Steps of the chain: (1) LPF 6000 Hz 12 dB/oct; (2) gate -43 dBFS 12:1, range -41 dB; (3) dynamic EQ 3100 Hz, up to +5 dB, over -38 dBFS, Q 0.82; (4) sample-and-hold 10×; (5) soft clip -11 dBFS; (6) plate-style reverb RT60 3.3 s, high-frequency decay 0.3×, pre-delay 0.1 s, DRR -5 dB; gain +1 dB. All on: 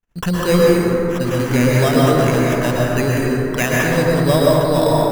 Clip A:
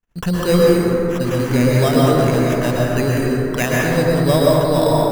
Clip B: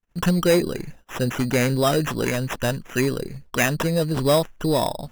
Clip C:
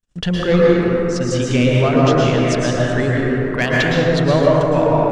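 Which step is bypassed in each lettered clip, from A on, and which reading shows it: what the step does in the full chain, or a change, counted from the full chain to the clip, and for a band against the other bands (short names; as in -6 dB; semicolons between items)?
3, 2 kHz band -2.0 dB; 6, crest factor change -2.0 dB; 4, distortion -5 dB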